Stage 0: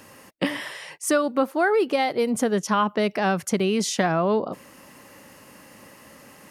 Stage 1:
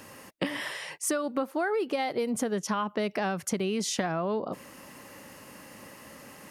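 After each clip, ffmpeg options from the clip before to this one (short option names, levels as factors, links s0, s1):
-af "acompressor=threshold=0.0447:ratio=4"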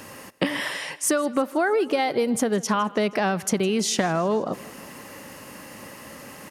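-af "aecho=1:1:159|318|477|636|795:0.0891|0.0517|0.03|0.0174|0.0101,volume=2.11"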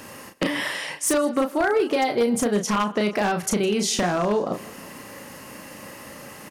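-filter_complex "[0:a]asplit=2[s0][s1];[s1]adelay=34,volume=0.531[s2];[s0][s2]amix=inputs=2:normalize=0,aeval=exprs='0.2*(abs(mod(val(0)/0.2+3,4)-2)-1)':c=same"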